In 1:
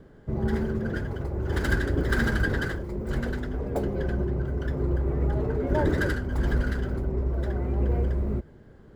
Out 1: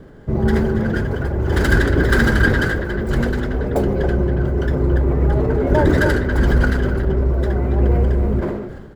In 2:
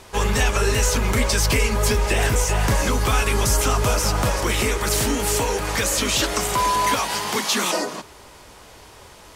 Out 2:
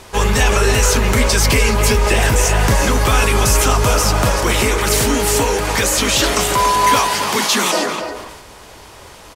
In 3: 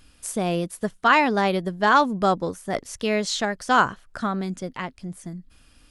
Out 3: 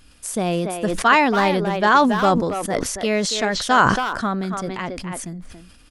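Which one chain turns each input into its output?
speakerphone echo 0.28 s, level -7 dB; sustainer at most 43 dB/s; normalise peaks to -2 dBFS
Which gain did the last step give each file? +9.0, +5.0, +2.5 dB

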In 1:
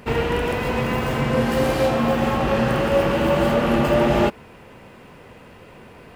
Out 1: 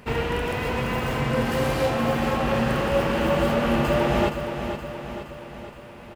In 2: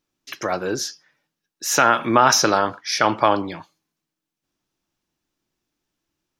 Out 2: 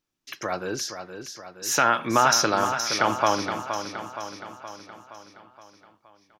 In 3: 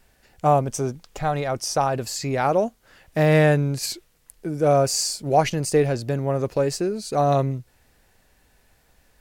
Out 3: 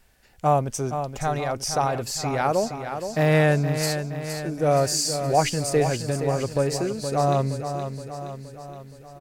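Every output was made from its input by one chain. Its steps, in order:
bell 370 Hz -2.5 dB 2.2 oct; on a send: feedback echo 0.47 s, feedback 56%, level -8.5 dB; on the sum: match loudness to -24 LUFS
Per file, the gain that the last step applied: -2.5, -4.0, -0.5 dB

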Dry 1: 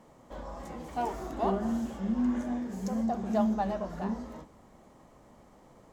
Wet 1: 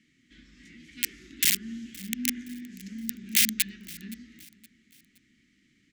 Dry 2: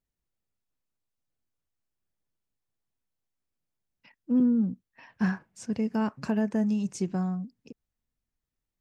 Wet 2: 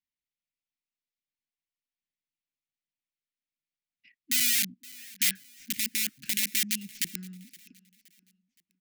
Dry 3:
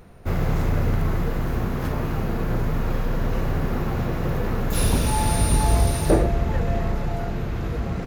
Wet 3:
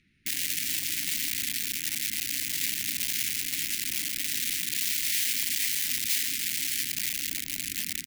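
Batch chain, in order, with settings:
tracing distortion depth 0.087 ms; LPF 2800 Hz 12 dB/oct; wrapped overs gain 21.5 dB; elliptic band-stop 290–2000 Hz, stop band 60 dB; tilt +4 dB/oct; feedback echo 0.519 s, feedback 40%, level -22 dB; match loudness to -27 LUFS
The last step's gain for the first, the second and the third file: +2.0, -3.5, -8.0 dB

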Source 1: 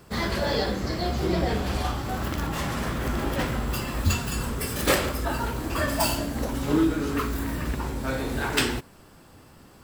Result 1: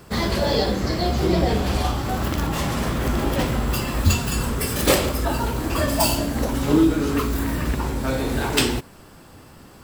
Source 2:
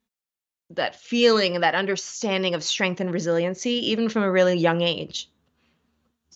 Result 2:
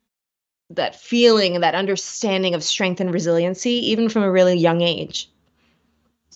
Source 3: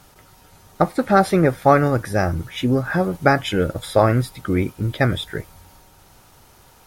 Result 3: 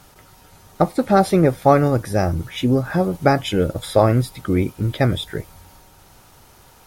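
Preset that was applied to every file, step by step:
dynamic EQ 1600 Hz, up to -7 dB, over -38 dBFS, Q 1.4; normalise peaks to -2 dBFS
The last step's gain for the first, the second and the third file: +5.5, +5.0, +1.5 dB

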